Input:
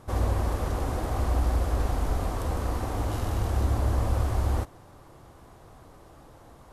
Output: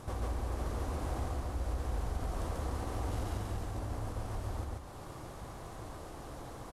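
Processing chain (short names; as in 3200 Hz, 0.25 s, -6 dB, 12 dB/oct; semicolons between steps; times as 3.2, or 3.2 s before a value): CVSD 64 kbps; compressor 6:1, threshold -39 dBFS, peak gain reduction 17.5 dB; loudspeakers at several distances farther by 48 m -1 dB, 91 m -11 dB; gain +2.5 dB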